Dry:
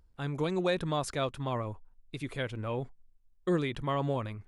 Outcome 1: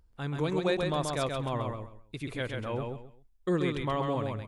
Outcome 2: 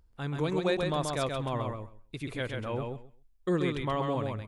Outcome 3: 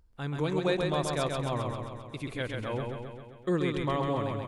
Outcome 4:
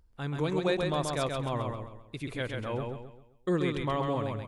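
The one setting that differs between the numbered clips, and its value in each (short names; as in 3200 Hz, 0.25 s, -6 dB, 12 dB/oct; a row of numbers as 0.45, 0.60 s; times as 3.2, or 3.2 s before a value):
feedback echo, feedback: 24, 15, 62, 37%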